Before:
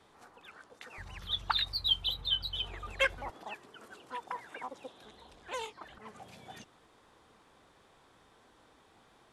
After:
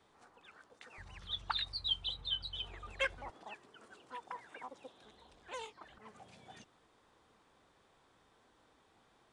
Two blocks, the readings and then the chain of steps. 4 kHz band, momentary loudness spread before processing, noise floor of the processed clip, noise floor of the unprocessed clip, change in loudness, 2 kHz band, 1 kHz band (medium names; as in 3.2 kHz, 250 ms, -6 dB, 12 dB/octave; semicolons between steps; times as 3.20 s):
-6.0 dB, 22 LU, -70 dBFS, -64 dBFS, -6.0 dB, -6.0 dB, -6.0 dB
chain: resampled via 22.05 kHz; trim -6 dB